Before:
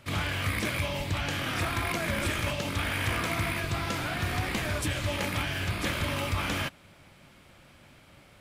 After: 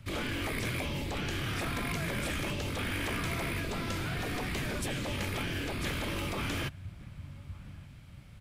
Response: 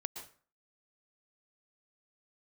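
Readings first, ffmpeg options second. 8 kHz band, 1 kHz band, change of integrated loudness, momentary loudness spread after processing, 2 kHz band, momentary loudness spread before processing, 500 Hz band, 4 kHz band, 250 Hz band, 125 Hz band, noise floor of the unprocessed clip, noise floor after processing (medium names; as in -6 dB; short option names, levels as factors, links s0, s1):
-4.0 dB, -5.5 dB, -4.0 dB, 14 LU, -5.0 dB, 2 LU, -3.5 dB, -4.5 dB, -1.5 dB, -4.0 dB, -56 dBFS, -50 dBFS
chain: -filter_complex "[0:a]tiltshelf=f=670:g=-4.5,asplit=2[s0][s1];[s1]adelay=1166,volume=0.0891,highshelf=f=4000:g=-26.2[s2];[s0][s2]amix=inputs=2:normalize=0,acrossover=split=180|660|2400[s3][s4][s5][s6];[s3]aeval=exprs='0.0596*sin(PI/2*8.91*val(0)/0.0596)':c=same[s7];[s7][s4][s5][s6]amix=inputs=4:normalize=0,volume=0.376"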